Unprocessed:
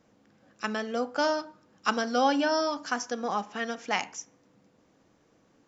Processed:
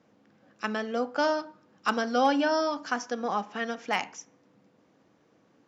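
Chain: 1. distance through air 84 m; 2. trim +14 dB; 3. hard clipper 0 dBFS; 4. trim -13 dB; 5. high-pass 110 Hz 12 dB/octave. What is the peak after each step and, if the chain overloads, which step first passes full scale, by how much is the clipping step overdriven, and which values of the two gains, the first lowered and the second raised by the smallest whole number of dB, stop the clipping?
-9.5 dBFS, +4.5 dBFS, 0.0 dBFS, -13.0 dBFS, -12.0 dBFS; step 2, 4.5 dB; step 2 +9 dB, step 4 -8 dB

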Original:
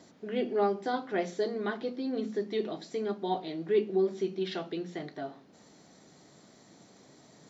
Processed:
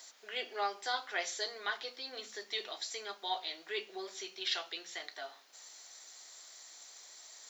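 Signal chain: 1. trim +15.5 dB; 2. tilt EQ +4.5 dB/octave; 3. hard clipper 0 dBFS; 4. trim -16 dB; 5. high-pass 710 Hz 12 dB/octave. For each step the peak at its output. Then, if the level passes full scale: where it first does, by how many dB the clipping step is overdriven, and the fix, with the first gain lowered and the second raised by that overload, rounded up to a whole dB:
-0.5 dBFS, -2.0 dBFS, -2.0 dBFS, -18.0 dBFS, -20.5 dBFS; nothing clips

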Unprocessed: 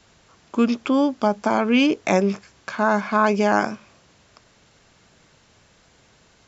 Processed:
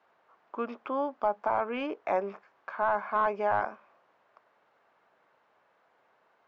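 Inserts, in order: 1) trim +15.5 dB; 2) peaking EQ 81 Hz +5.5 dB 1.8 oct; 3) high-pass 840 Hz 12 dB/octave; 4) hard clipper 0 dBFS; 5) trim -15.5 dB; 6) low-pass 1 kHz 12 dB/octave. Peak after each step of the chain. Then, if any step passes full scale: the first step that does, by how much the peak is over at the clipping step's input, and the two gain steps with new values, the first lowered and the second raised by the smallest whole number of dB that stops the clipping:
+11.5 dBFS, +12.0 dBFS, +7.5 dBFS, 0.0 dBFS, -15.5 dBFS, -16.0 dBFS; step 1, 7.5 dB; step 1 +7.5 dB, step 5 -7.5 dB

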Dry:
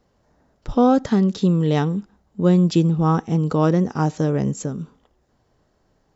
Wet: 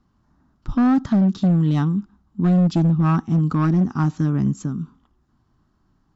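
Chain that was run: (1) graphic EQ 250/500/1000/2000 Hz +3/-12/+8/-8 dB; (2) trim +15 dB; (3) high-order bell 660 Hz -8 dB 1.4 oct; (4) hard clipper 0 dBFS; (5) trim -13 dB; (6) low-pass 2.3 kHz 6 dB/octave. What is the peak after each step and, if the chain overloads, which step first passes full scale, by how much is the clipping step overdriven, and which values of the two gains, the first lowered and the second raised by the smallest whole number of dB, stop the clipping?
-7.5 dBFS, +7.5 dBFS, +6.5 dBFS, 0.0 dBFS, -13.0 dBFS, -13.0 dBFS; step 2, 6.5 dB; step 2 +8 dB, step 5 -6 dB

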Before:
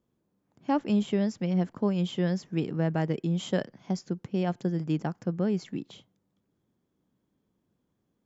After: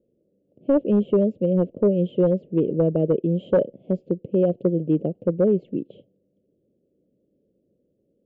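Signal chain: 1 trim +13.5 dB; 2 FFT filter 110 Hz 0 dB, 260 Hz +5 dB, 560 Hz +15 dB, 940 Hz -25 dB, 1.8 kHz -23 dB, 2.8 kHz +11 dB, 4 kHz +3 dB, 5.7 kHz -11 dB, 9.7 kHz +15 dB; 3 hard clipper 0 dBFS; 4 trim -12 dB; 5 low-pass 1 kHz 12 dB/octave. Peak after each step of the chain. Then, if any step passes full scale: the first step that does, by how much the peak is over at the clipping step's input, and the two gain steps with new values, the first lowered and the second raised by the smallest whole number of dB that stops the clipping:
-0.5 dBFS, +7.5 dBFS, 0.0 dBFS, -12.0 dBFS, -11.5 dBFS; step 2, 7.5 dB; step 1 +5.5 dB, step 4 -4 dB

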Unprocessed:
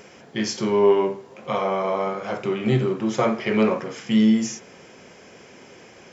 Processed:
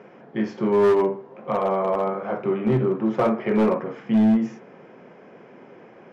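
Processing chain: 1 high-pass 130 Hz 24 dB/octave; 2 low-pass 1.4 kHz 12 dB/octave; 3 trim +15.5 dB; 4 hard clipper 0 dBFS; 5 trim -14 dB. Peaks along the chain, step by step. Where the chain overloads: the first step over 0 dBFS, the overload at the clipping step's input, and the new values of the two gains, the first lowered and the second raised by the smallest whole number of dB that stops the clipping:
-7.5 dBFS, -7.5 dBFS, +8.0 dBFS, 0.0 dBFS, -14.0 dBFS; step 3, 8.0 dB; step 3 +7.5 dB, step 5 -6 dB

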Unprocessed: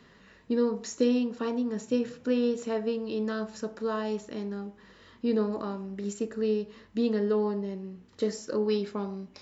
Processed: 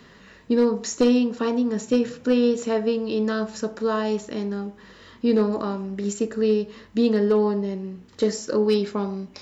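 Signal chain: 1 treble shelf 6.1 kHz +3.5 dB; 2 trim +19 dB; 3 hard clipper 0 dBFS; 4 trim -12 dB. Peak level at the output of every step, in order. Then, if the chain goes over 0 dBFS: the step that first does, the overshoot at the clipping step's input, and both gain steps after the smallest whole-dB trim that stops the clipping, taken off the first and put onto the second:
-13.5 dBFS, +5.5 dBFS, 0.0 dBFS, -12.0 dBFS; step 2, 5.5 dB; step 2 +13 dB, step 4 -6 dB

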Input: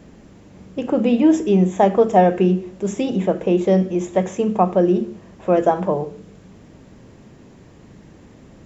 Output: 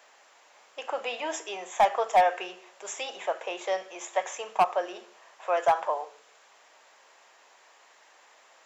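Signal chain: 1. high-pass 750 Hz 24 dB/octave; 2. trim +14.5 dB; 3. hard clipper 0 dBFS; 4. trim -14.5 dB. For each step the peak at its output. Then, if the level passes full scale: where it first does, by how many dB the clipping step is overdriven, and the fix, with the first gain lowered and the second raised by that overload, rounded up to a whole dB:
-7.5 dBFS, +7.0 dBFS, 0.0 dBFS, -14.5 dBFS; step 2, 7.0 dB; step 2 +7.5 dB, step 4 -7.5 dB

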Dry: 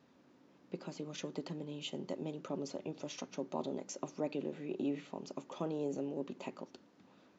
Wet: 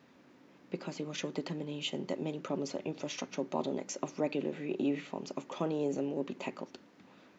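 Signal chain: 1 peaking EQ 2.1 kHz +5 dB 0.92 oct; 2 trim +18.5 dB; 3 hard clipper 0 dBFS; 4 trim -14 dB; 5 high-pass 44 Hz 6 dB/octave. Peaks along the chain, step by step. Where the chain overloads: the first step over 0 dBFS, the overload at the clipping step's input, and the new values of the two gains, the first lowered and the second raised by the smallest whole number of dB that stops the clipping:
-23.5 dBFS, -5.0 dBFS, -5.0 dBFS, -19.0 dBFS, -19.5 dBFS; nothing clips

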